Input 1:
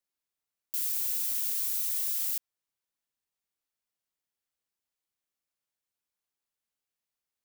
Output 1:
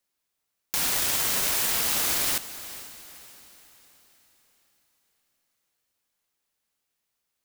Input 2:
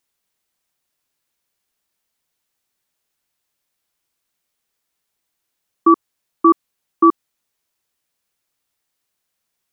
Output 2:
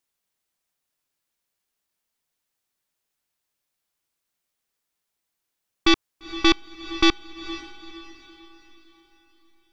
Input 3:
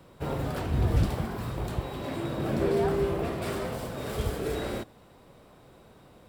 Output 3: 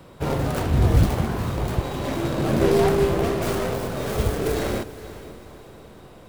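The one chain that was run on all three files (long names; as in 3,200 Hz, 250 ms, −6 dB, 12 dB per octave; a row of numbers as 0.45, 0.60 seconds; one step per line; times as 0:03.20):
stylus tracing distortion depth 0.47 ms
feedback delay with all-pass diffusion 465 ms, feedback 44%, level −14.5 dB
loudness normalisation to −23 LKFS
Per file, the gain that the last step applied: +8.5, −5.0, +7.0 decibels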